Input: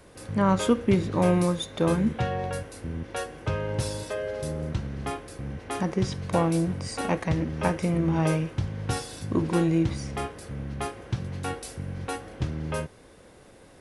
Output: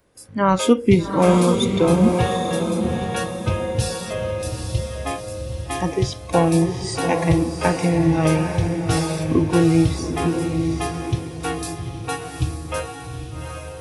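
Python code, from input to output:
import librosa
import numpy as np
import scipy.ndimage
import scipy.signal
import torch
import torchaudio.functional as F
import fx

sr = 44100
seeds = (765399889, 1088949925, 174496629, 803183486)

y = fx.noise_reduce_blind(x, sr, reduce_db=18)
y = fx.echo_diffused(y, sr, ms=811, feedback_pct=41, wet_db=-5)
y = y * librosa.db_to_amplitude(7.5)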